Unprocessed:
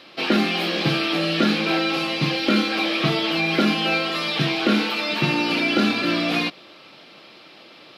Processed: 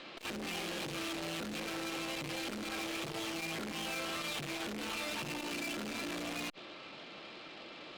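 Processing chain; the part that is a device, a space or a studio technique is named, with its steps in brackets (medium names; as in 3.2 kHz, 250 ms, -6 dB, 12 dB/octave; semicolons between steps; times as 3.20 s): valve radio (band-pass 100–4100 Hz; valve stage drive 36 dB, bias 0.5; transformer saturation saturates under 380 Hz)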